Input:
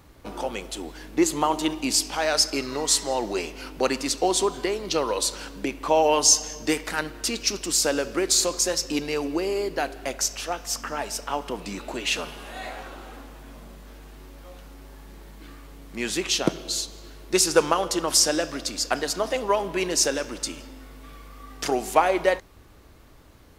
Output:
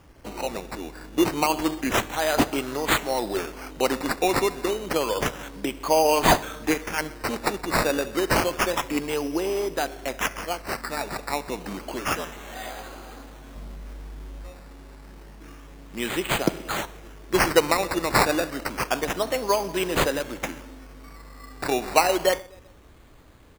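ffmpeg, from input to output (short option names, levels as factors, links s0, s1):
-filter_complex "[0:a]asettb=1/sr,asplit=3[s0][s1][s2];[s0]atrim=end=13.554[s3];[s1]atrim=start=13.55:end=14.5,asetpts=PTS-STARTPTS,afade=t=in:d=0.004:c=qsin,afade=t=out:st=0.946:d=0.004:c=qsin,lowshelf=f=110:g=9.5[s4];[s2]atrim=start=14.496[s5];[s3][s4]acrossfade=d=0.004:c1=hsin:c2=qsin[s6];[s6][s5]acrossfade=d=0.004:c1=qsin:c2=hsin,asplit=2[s7][s8];[s8]adelay=127,lowpass=f=3600:p=1,volume=0.0708,asplit=2[s9][s10];[s10]adelay=127,lowpass=f=3600:p=1,volume=0.5,asplit=2[s11][s12];[s12]adelay=127,lowpass=f=3600:p=1,volume=0.5[s13];[s7][s9][s11][s13]amix=inputs=4:normalize=0,acrusher=samples=11:mix=1:aa=0.000001:lfo=1:lforange=6.6:lforate=0.29"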